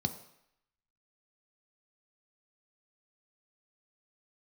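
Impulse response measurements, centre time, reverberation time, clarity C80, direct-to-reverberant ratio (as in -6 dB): 10 ms, 0.75 s, 14.5 dB, 7.0 dB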